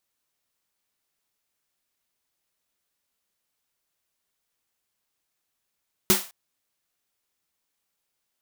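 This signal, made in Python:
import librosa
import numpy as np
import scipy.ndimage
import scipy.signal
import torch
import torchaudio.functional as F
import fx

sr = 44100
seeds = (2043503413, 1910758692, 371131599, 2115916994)

y = fx.drum_snare(sr, seeds[0], length_s=0.21, hz=200.0, second_hz=370.0, noise_db=2.0, noise_from_hz=560.0, decay_s=0.18, noise_decay_s=0.35)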